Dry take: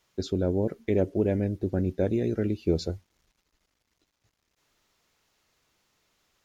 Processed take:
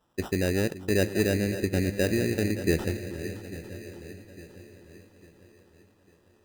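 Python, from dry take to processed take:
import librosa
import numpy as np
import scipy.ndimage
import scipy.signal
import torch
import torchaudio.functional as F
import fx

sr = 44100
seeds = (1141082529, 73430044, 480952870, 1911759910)

y = fx.reverse_delay_fb(x, sr, ms=425, feedback_pct=65, wet_db=-13.0)
y = fx.sample_hold(y, sr, seeds[0], rate_hz=2200.0, jitter_pct=0)
y = fx.echo_split(y, sr, split_hz=360.0, low_ms=419, high_ms=572, feedback_pct=52, wet_db=-14.0)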